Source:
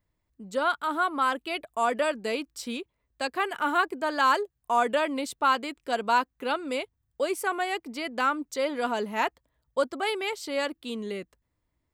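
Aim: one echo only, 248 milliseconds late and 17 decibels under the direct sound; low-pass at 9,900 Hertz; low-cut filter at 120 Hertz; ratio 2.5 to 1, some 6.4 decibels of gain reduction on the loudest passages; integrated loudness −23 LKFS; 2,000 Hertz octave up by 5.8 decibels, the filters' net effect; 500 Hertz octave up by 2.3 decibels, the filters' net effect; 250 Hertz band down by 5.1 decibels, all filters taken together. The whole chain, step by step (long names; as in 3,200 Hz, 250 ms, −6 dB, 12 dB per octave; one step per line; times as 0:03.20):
high-pass filter 120 Hz
low-pass filter 9,900 Hz
parametric band 250 Hz −8 dB
parametric band 500 Hz +4 dB
parametric band 2,000 Hz +8 dB
downward compressor 2.5 to 1, threshold −25 dBFS
single-tap delay 248 ms −17 dB
level +6.5 dB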